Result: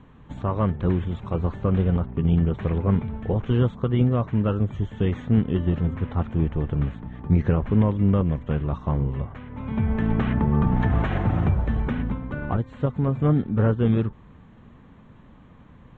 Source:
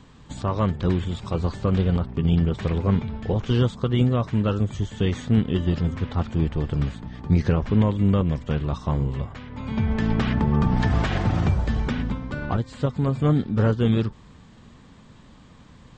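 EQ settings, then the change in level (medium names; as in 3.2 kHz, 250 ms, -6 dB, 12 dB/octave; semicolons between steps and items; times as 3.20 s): boxcar filter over 9 samples; distance through air 77 m; 0.0 dB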